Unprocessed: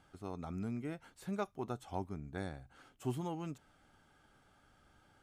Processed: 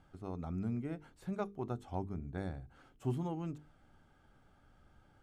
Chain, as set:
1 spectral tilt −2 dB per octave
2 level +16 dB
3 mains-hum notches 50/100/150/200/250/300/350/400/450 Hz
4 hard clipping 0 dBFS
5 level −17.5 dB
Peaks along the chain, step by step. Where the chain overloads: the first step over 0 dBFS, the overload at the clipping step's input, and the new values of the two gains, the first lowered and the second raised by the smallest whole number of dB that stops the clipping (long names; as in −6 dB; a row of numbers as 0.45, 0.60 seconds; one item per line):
−20.5, −4.5, −5.5, −5.5, −23.0 dBFS
no step passes full scale